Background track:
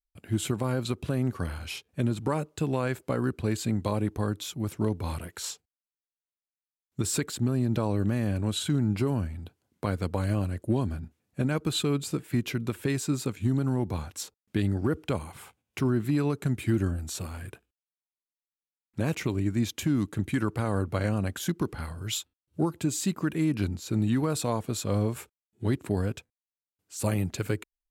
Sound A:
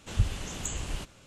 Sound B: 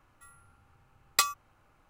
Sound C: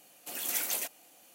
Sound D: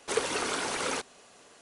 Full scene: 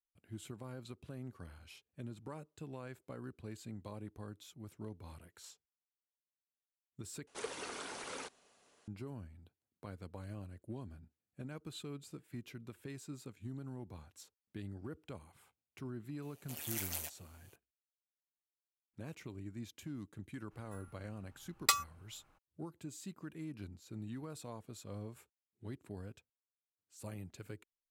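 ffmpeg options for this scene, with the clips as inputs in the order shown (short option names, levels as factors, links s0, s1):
-filter_complex "[0:a]volume=0.112[s0];[3:a]tremolo=f=150:d=0.824[s1];[s0]asplit=2[s2][s3];[s2]atrim=end=7.274[s4];[4:a]atrim=end=1.61,asetpts=PTS-STARTPTS,volume=0.211[s5];[s3]atrim=start=8.876[s6];[s1]atrim=end=1.34,asetpts=PTS-STARTPTS,volume=0.562,afade=t=in:d=0.004:c=hsin,afade=t=out:st=1.336:d=0.004:c=hsin,adelay=16220[s7];[2:a]atrim=end=1.89,asetpts=PTS-STARTPTS,volume=0.631,afade=t=in:d=0.02,afade=t=out:st=1.87:d=0.02,adelay=20500[s8];[s4][s5]acrossfade=d=0.004:c1=hsin:c2=hsin[s9];[s9][s6]acrossfade=d=0.004:c1=hsin:c2=hsin[s10];[s10][s7][s8]amix=inputs=3:normalize=0"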